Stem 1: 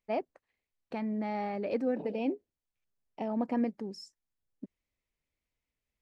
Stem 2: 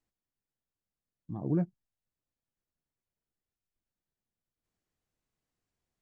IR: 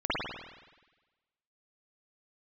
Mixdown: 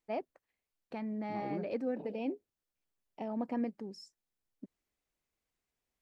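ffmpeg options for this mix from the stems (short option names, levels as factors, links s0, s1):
-filter_complex "[0:a]volume=0.596[s0];[1:a]highpass=250,acompressor=threshold=0.0158:ratio=3,volume=0.841[s1];[s0][s1]amix=inputs=2:normalize=0"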